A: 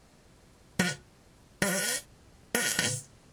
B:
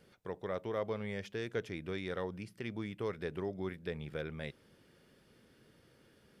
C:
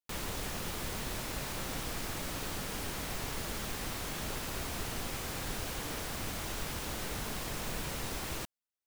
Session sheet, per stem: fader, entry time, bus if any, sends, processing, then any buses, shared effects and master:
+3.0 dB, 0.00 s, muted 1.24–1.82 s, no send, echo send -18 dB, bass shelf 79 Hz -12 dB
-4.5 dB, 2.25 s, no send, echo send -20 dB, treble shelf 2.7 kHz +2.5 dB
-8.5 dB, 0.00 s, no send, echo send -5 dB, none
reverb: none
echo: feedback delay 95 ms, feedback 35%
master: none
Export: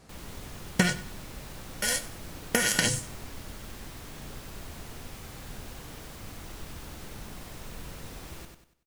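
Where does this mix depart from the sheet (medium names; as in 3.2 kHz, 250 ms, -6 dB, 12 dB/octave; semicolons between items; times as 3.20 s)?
stem B: muted; master: extra bass shelf 270 Hz +6 dB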